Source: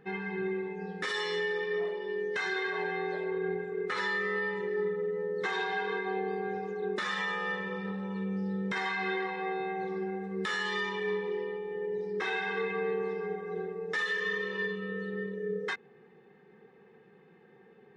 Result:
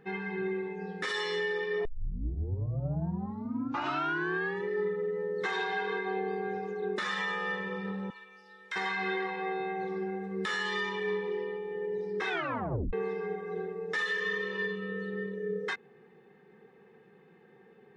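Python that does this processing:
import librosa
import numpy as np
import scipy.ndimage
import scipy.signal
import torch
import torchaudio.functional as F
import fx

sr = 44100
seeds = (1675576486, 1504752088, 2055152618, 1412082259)

y = fx.highpass(x, sr, hz=1400.0, slope=12, at=(8.1, 8.76))
y = fx.edit(y, sr, fx.tape_start(start_s=1.85, length_s=2.83),
    fx.tape_stop(start_s=12.29, length_s=0.64), tone=tone)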